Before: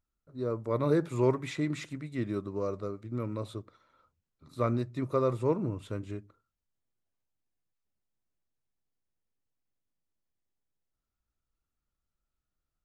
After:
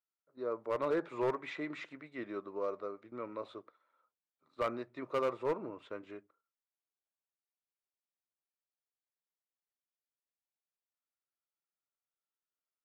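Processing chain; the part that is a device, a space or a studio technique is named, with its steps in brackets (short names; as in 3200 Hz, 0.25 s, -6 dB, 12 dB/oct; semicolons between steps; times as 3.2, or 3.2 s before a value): walkie-talkie (BPF 490–2600 Hz; hard clip -26.5 dBFS, distortion -14 dB; gate -56 dBFS, range -8 dB)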